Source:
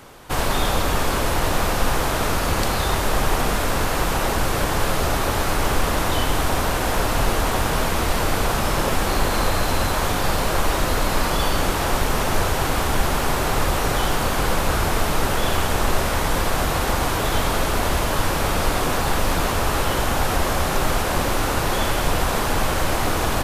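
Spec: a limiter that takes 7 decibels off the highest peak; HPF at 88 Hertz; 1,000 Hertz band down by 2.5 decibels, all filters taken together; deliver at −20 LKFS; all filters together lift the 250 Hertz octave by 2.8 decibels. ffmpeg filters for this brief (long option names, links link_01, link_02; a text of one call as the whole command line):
ffmpeg -i in.wav -af "highpass=88,equalizer=frequency=250:width_type=o:gain=4,equalizer=frequency=1000:width_type=o:gain=-3.5,volume=4dB,alimiter=limit=-10.5dB:level=0:latency=1" out.wav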